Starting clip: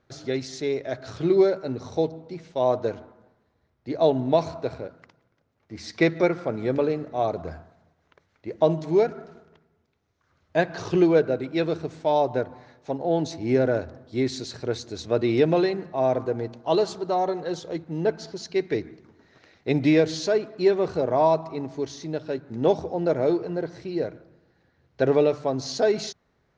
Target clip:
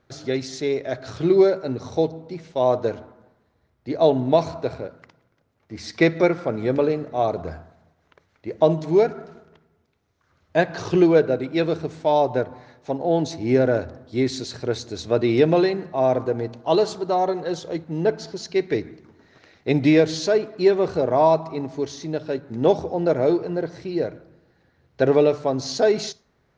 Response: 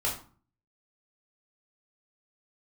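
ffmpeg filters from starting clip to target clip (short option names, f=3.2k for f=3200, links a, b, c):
-filter_complex "[0:a]asplit=2[a][b];[1:a]atrim=start_sample=2205,adelay=31[c];[b][c]afir=irnorm=-1:irlink=0,volume=-29.5dB[d];[a][d]amix=inputs=2:normalize=0,volume=3dB"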